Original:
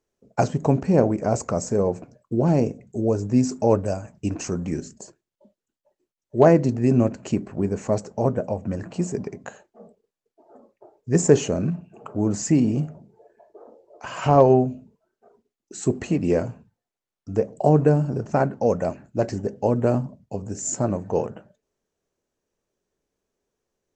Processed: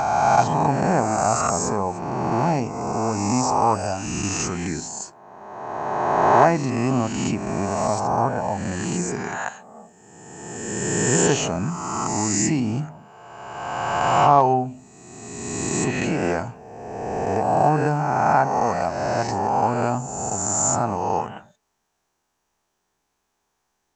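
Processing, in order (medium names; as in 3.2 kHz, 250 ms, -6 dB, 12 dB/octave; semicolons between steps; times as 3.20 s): reverse spectral sustain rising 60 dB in 1.78 s; resonant low shelf 660 Hz -6.5 dB, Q 3; in parallel at +1.5 dB: compression, threshold -29 dBFS, peak gain reduction 17.5 dB; on the sum: trim -1 dB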